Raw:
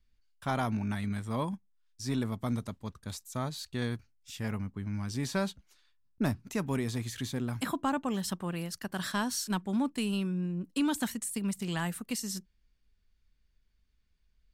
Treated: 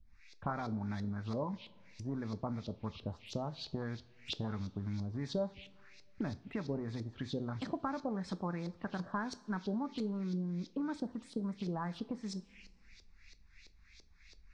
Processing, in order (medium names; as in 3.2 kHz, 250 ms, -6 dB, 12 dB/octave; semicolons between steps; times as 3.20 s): compression 5:1, threshold -47 dBFS, peak gain reduction 19 dB; band noise 2.2–6.5 kHz -63 dBFS; touch-sensitive phaser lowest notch 330 Hz, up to 2.9 kHz, full sweep at -45 dBFS; LFO low-pass saw up 3 Hz 390–4200 Hz; two-slope reverb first 0.31 s, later 2.1 s, from -18 dB, DRR 11 dB; trim +9 dB